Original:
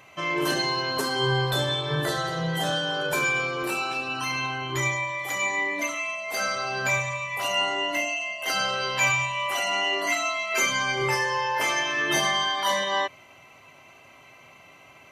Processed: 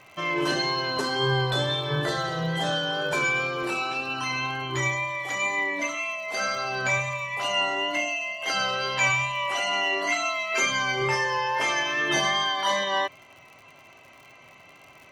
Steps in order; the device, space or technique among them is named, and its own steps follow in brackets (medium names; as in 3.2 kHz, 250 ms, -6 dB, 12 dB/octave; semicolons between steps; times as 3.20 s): lo-fi chain (low-pass 6.6 kHz 12 dB/octave; wow and flutter 19 cents; crackle 97 per s -41 dBFS)